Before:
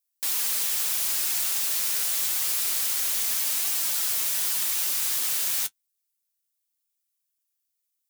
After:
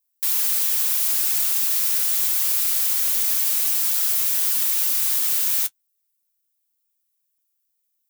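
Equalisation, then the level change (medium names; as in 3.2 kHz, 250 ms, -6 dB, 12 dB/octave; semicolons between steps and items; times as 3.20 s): treble shelf 12 kHz +8 dB; 0.0 dB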